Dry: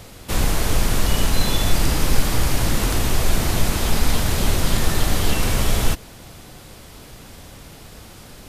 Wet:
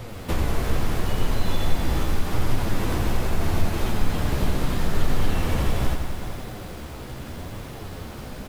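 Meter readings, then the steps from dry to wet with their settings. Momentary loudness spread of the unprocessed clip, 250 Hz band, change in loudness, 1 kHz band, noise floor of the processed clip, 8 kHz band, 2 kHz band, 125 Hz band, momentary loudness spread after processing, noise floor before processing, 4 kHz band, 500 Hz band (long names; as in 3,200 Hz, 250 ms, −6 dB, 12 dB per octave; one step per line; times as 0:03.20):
20 LU, −2.5 dB, −6.0 dB, −3.5 dB, −37 dBFS, −13.0 dB, −6.0 dB, −2.5 dB, 11 LU, −42 dBFS, −9.5 dB, −3.0 dB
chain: parametric band 8,900 Hz −11.5 dB 2.7 octaves
downward compressor 2 to 1, threshold −32 dBFS, peak gain reduction 13 dB
flanger 0.78 Hz, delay 7.6 ms, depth 8.9 ms, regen +24%
single-tap delay 414 ms −13 dB
feedback echo at a low word length 87 ms, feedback 80%, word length 9 bits, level −8 dB
level +9 dB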